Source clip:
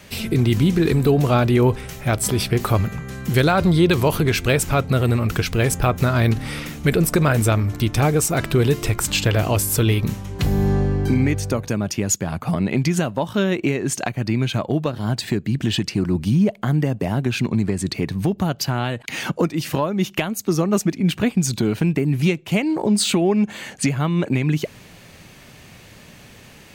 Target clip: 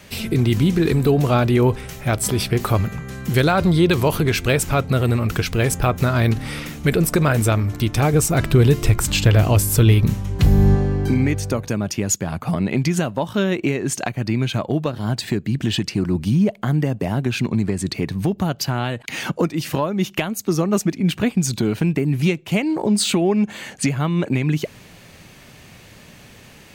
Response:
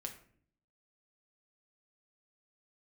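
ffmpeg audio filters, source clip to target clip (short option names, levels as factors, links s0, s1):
-filter_complex "[0:a]asettb=1/sr,asplit=3[s0][s1][s2];[s0]atrim=end=8.134[s3];[s1]atrim=start=8.13:end=10.75,asetpts=PTS-STARTPTS,afade=t=in:d=0.004:c=qsin,afade=t=out:st=2.616:d=0.004:c=qsin,lowshelf=f=150:g=9[s4];[s2]atrim=start=10.746[s5];[s3][s4]acrossfade=d=0.004:c1=hsin:c2=qsin[s6];[s6][s5]acrossfade=d=0.004:c1=qsin:c2=hsin"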